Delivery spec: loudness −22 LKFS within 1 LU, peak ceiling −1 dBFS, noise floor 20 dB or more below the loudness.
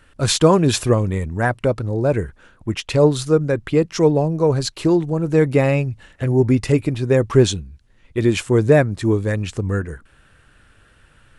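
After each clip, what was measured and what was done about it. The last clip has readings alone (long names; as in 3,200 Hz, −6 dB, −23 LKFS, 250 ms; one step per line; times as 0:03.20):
integrated loudness −18.5 LKFS; sample peak −1.5 dBFS; target loudness −22.0 LKFS
→ level −3.5 dB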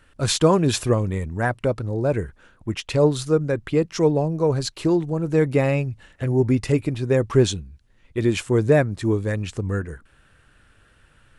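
integrated loudness −22.0 LKFS; sample peak −5.0 dBFS; background noise floor −58 dBFS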